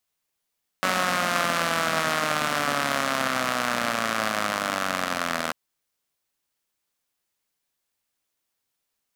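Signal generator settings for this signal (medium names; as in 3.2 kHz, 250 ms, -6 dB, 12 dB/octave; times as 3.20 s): four-cylinder engine model, changing speed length 4.69 s, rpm 5600, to 2400, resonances 250/640/1200 Hz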